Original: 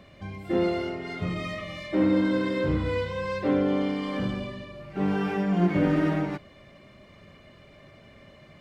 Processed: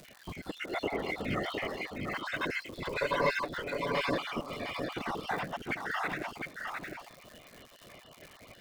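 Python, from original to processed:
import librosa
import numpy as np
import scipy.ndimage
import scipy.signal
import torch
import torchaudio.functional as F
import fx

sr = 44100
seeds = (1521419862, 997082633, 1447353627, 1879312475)

p1 = fx.spec_dropout(x, sr, seeds[0], share_pct=51)
p2 = np.sign(p1) * np.maximum(np.abs(p1) - 10.0 ** (-48.5 / 20.0), 0.0)
p3 = p1 + F.gain(torch.from_numpy(p2), -7.0).numpy()
p4 = fx.bass_treble(p3, sr, bass_db=-2, treble_db=-7, at=(0.86, 2.26))
p5 = fx.over_compress(p4, sr, threshold_db=-28.0, ratio=-0.5)
p6 = fx.whisperise(p5, sr, seeds[1])
p7 = fx.comb(p6, sr, ms=7.0, depth=0.89, at=(3.0, 4.14))
p8 = p7 + 10.0 ** (-4.5 / 20.0) * np.pad(p7, (int(709 * sr / 1000.0), 0))[:len(p7)]
p9 = fx.dmg_crackle(p8, sr, seeds[2], per_s=210.0, level_db=-38.0)
p10 = fx.low_shelf(p9, sr, hz=380.0, db=-9.5)
y = F.gain(torch.from_numpy(p10), -2.0).numpy()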